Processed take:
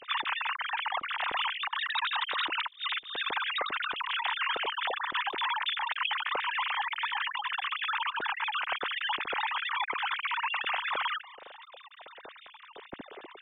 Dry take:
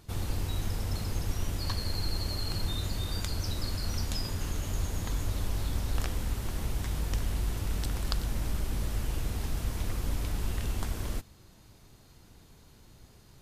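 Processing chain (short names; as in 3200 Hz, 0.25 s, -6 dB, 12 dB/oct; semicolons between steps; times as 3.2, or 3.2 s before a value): sine-wave speech; negative-ratio compressor -31 dBFS, ratio -0.5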